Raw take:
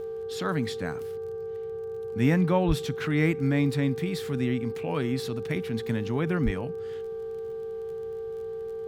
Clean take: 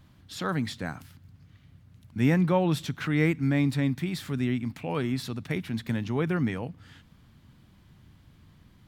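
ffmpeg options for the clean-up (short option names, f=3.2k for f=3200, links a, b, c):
-filter_complex "[0:a]adeclick=t=4,bandreject=f=392.6:t=h:w=4,bandreject=f=785.2:t=h:w=4,bandreject=f=1.1778k:t=h:w=4,bandreject=f=1.5704k:t=h:w=4,bandreject=f=450:w=30,asplit=3[a][b][c];[a]afade=t=out:st=2.67:d=0.02[d];[b]highpass=f=140:w=0.5412,highpass=f=140:w=1.3066,afade=t=in:st=2.67:d=0.02,afade=t=out:st=2.79:d=0.02[e];[c]afade=t=in:st=2.79:d=0.02[f];[d][e][f]amix=inputs=3:normalize=0,asplit=3[g][h][i];[g]afade=t=out:st=6.44:d=0.02[j];[h]highpass=f=140:w=0.5412,highpass=f=140:w=1.3066,afade=t=in:st=6.44:d=0.02,afade=t=out:st=6.56:d=0.02[k];[i]afade=t=in:st=6.56:d=0.02[l];[j][k][l]amix=inputs=3:normalize=0"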